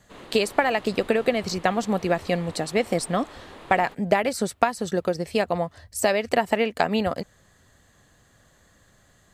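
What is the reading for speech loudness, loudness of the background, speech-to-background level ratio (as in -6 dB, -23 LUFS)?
-24.5 LUFS, -44.5 LUFS, 20.0 dB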